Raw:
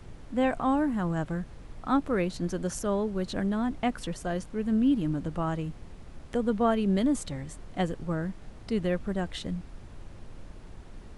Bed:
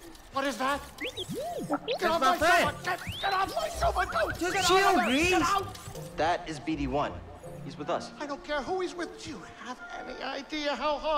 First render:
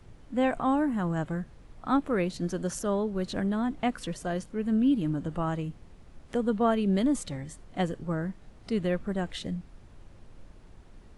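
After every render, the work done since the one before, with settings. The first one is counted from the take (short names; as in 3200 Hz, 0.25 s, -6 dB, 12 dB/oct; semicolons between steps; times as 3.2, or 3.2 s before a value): noise print and reduce 6 dB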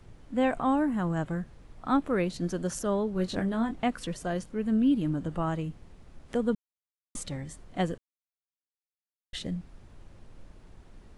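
3.14–3.76 doubler 22 ms -7 dB; 6.55–7.15 mute; 7.98–9.33 mute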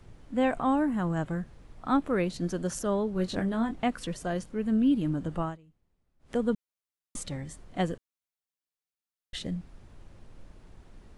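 5.41–6.36 dip -24 dB, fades 0.17 s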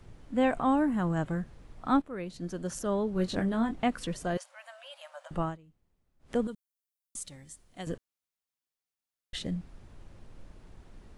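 2.02–3.17 fade in, from -14.5 dB; 4.37–5.31 brick-wall FIR high-pass 530 Hz; 6.47–7.87 pre-emphasis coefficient 0.8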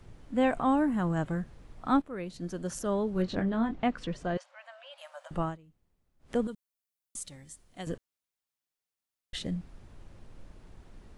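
3.22–4.98 air absorption 120 m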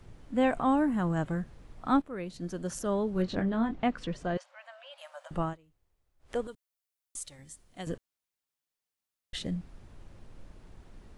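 5.53–7.39 bell 200 Hz -13 dB 0.9 oct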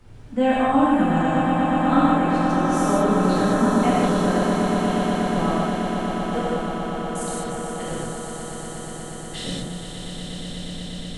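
swelling echo 0.12 s, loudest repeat 8, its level -9 dB; non-linear reverb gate 0.23 s flat, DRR -7.5 dB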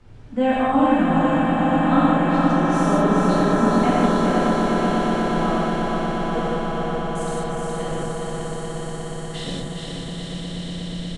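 air absorption 52 m; feedback echo 0.417 s, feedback 56%, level -4.5 dB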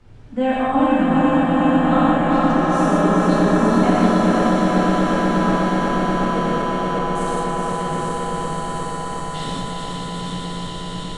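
regenerating reverse delay 0.368 s, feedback 83%, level -7 dB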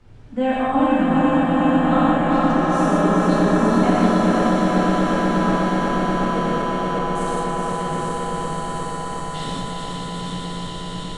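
gain -1 dB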